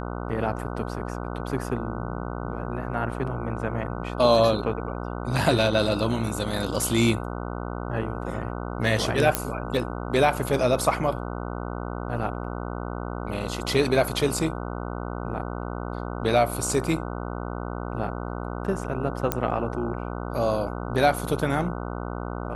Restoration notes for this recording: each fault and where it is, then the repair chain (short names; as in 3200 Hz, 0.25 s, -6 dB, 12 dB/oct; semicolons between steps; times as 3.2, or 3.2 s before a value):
buzz 60 Hz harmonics 25 -32 dBFS
9.35 pop -4 dBFS
19.32 pop -7 dBFS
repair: de-click; de-hum 60 Hz, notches 25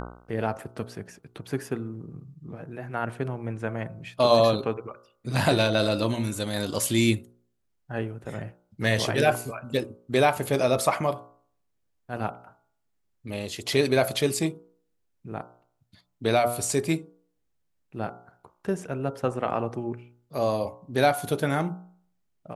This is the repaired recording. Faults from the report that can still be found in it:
none